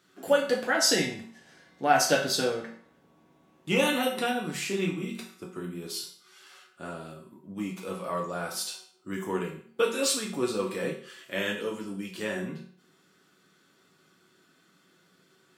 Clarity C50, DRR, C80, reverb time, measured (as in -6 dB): 7.5 dB, -2.0 dB, 11.5 dB, 0.50 s